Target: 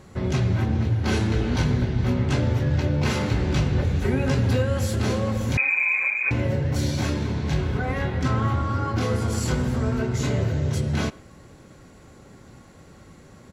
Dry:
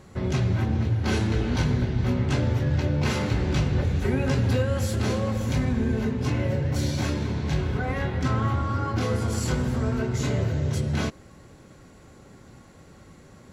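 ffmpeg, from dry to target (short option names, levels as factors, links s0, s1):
-filter_complex "[0:a]asettb=1/sr,asplit=3[s0][s1][s2];[s0]atrim=end=5.574[s3];[s1]atrim=start=5.57:end=6.31,asetpts=PTS-STARTPTS,afade=t=in:d=0.004:c=qsin,afade=t=out:st=0.736:d=0.004:c=qsin,lowpass=f=2200:t=q:w=0.5098,lowpass=f=2200:t=q:w=0.6013,lowpass=f=2200:t=q:w=0.9,lowpass=f=2200:t=q:w=2.563,afreqshift=-2600[s4];[s2]atrim=start=6.306[s5];[s3][s4]acrossfade=d=0.004:c1=hsin:c2=qsin[s6];[s6][s5]acrossfade=d=0.004:c1=qsin:c2=hsin,asplit=2[s7][s8];[s8]adelay=110,highpass=300,lowpass=3400,asoftclip=type=hard:threshold=0.0708,volume=0.0794[s9];[s7][s9]amix=inputs=2:normalize=0,volume=1.19"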